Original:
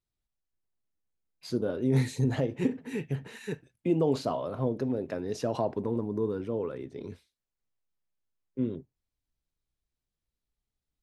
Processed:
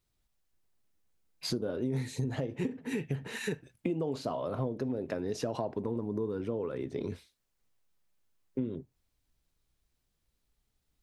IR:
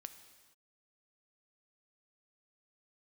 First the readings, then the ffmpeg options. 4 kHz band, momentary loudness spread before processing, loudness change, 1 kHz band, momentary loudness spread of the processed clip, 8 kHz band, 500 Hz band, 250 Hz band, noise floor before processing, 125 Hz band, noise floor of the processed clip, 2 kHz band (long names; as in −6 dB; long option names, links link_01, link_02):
+2.0 dB, 13 LU, −4.5 dB, −4.0 dB, 5 LU, +1.0 dB, −4.0 dB, −4.0 dB, below −85 dBFS, −5.0 dB, −80 dBFS, +0.5 dB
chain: -af "acompressor=threshold=-40dB:ratio=6,volume=9dB"